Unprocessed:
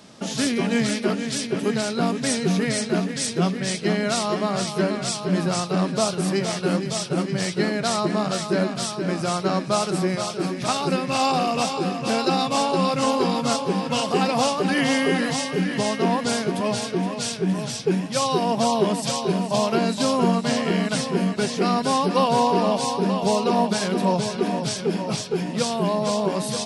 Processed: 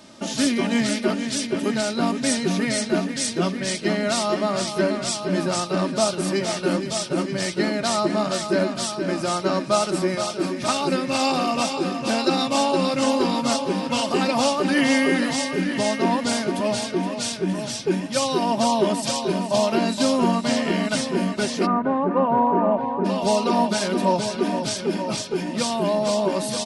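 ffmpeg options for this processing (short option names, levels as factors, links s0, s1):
-filter_complex "[0:a]asplit=3[s0][s1][s2];[s0]afade=t=out:st=21.65:d=0.02[s3];[s1]lowpass=f=1700:w=0.5412,lowpass=f=1700:w=1.3066,afade=t=in:st=21.65:d=0.02,afade=t=out:st=23.04:d=0.02[s4];[s2]afade=t=in:st=23.04:d=0.02[s5];[s3][s4][s5]amix=inputs=3:normalize=0,aecho=1:1:3.3:0.49"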